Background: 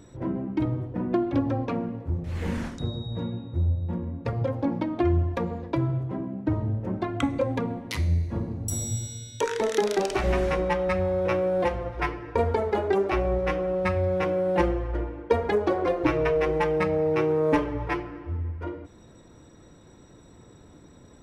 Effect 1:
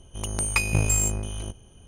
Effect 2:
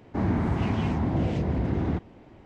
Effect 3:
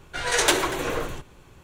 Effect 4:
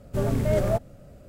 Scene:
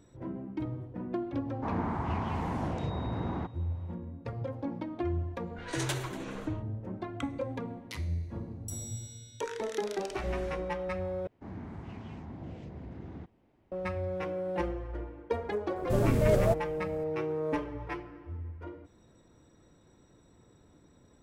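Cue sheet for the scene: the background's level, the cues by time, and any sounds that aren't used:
background -9.5 dB
1.48 add 2 -10 dB + bell 1000 Hz +12 dB 1.2 oct
5.41 add 3 -15.5 dB + low-pass opened by the level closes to 470 Hz, open at -21.5 dBFS
11.27 replace with 2 -17.5 dB
15.76 add 4 -2 dB
not used: 1

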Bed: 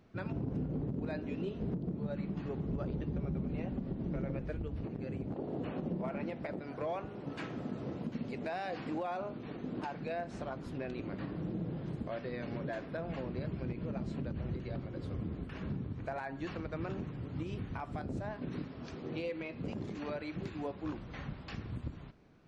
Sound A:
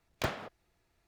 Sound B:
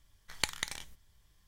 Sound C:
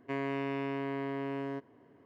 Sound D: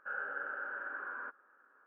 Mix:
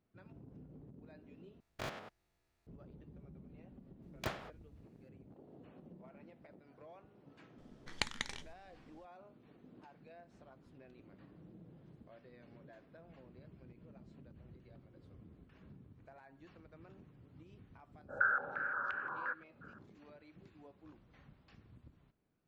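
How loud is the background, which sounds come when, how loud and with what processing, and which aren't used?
bed -19 dB
1.6 replace with A -5 dB + stepped spectrum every 0.1 s
4.02 add A -6.5 dB
7.58 add B -2 dB + air absorption 79 m
18.03 add D -2 dB, fades 0.10 s + stepped low-pass 5.7 Hz 640–2800 Hz
not used: C

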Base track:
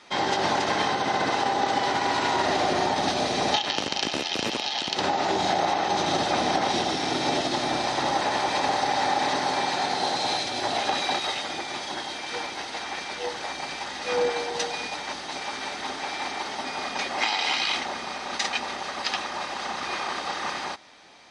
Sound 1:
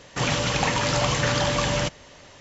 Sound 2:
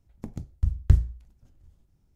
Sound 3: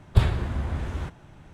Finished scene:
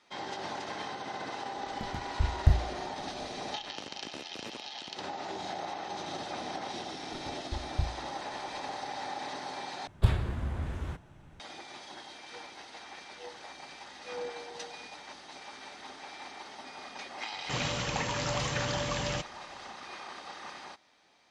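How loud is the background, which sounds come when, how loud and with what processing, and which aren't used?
base track -14 dB
1.57 add 2 -4.5 dB
6.89 add 2 -13.5 dB
9.87 replace with 3 -5.5 dB
17.33 add 1 -9.5 dB

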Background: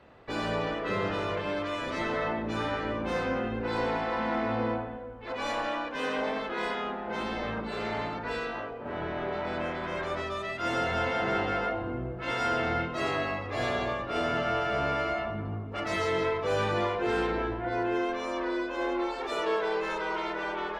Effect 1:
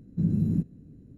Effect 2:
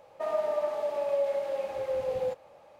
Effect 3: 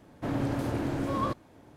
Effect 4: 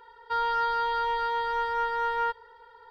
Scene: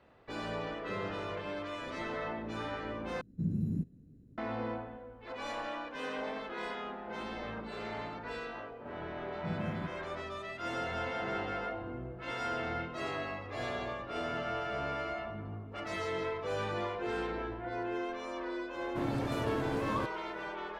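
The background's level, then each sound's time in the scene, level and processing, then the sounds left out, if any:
background -7.5 dB
3.21 replace with 1 -8 dB
9.26 add 1 -13.5 dB + HPF 46 Hz
18.73 add 3 -5 dB
not used: 2, 4

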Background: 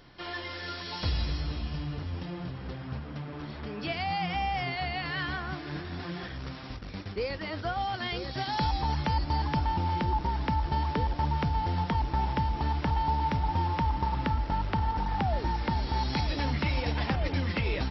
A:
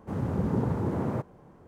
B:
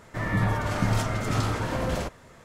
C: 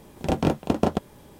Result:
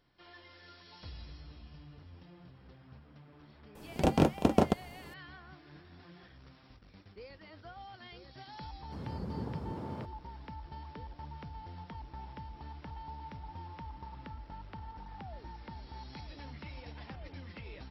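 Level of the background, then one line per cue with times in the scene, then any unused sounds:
background -17.5 dB
3.75 add C -3 dB
8.84 add A -12 dB
not used: B

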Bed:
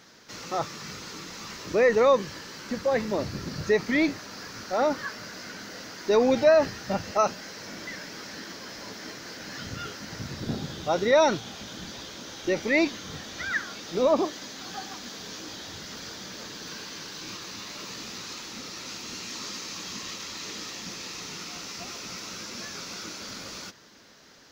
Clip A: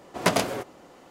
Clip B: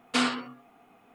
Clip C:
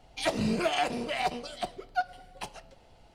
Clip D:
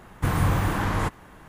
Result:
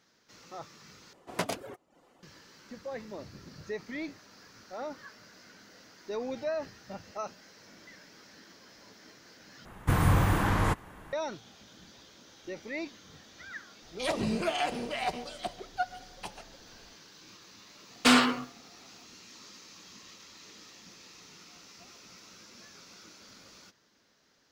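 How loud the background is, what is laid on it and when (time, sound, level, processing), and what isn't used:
bed -14.5 dB
1.13 replace with A -10 dB + reverb removal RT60 0.54 s
9.65 replace with D -1.5 dB
13.82 add C -2.5 dB + speakerphone echo 0.14 s, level -15 dB
17.91 add B + sample leveller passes 2

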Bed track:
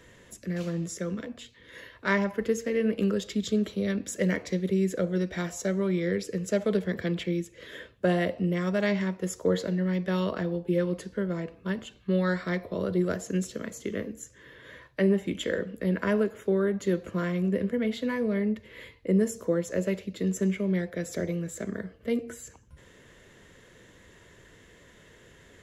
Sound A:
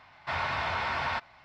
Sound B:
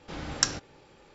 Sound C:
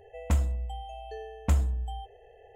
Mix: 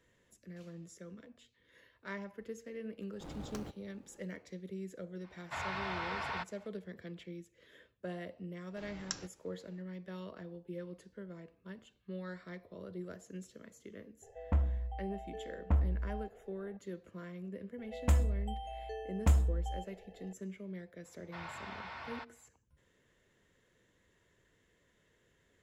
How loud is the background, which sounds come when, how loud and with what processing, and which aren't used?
bed track -17.5 dB
3.12 add B -7.5 dB + median filter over 25 samples
5.24 add A -8 dB
8.68 add B -15 dB
14.22 add C -5 dB + LPF 1600 Hz
17.78 add C -2.5 dB
21.05 add A -15 dB

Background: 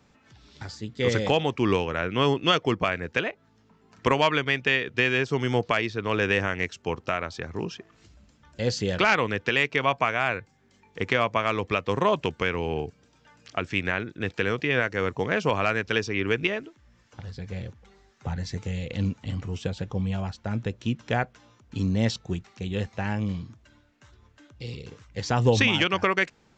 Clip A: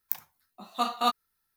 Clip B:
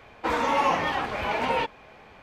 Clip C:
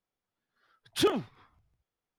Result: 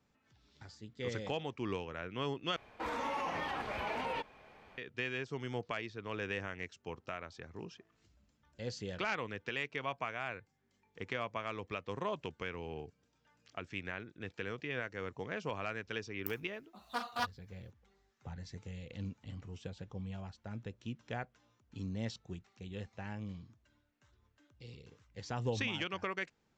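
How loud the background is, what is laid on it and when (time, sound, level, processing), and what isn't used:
background -15 dB
2.56 replace with B -9 dB + limiter -20 dBFS
16.15 add A -10 dB + Doppler distortion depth 0.25 ms
not used: C

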